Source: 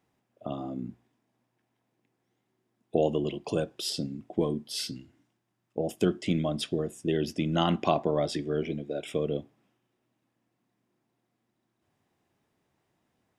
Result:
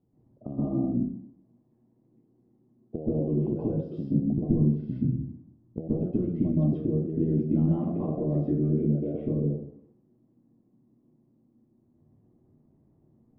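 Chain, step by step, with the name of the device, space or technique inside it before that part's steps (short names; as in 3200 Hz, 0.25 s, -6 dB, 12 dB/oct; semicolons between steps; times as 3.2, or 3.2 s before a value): 4.28–5.8 tone controls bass +9 dB, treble -14 dB; television next door (compressor 6:1, threshold -35 dBFS, peak gain reduction 16 dB; LPF 310 Hz 12 dB/oct; reverb RT60 0.65 s, pre-delay 0.119 s, DRR -8 dB); gain +7 dB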